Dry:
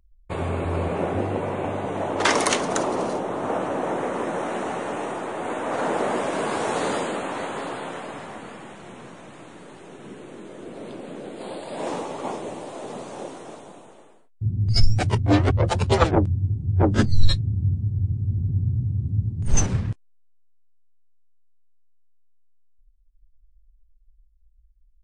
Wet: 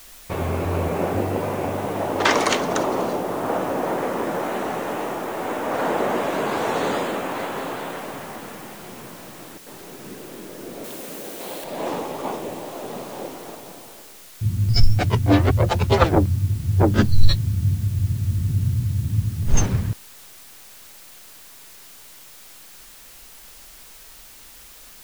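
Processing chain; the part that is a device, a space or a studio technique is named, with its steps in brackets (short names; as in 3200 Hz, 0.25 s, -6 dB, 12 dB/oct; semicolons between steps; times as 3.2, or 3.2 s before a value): worn cassette (LPF 6000 Hz; wow and flutter; level dips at 9.58, 84 ms -12 dB; white noise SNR 23 dB); 10.84–11.64 tilt +2 dB/oct; gain +2 dB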